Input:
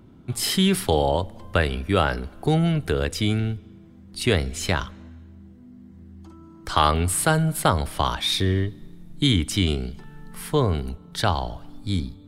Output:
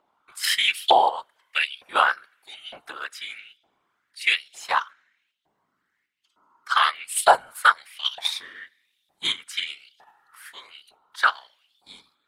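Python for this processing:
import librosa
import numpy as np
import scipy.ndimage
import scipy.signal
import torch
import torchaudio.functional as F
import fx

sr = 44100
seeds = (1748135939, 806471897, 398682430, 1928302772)

p1 = fx.filter_lfo_highpass(x, sr, shape='saw_up', hz=1.1, low_hz=730.0, high_hz=3500.0, q=4.3)
p2 = fx.whisperise(p1, sr, seeds[0])
p3 = fx.level_steps(p2, sr, step_db=23)
p4 = p2 + F.gain(torch.from_numpy(p3), -1.0).numpy()
p5 = fx.upward_expand(p4, sr, threshold_db=-33.0, expansion=1.5)
y = F.gain(torch.from_numpy(p5), -1.0).numpy()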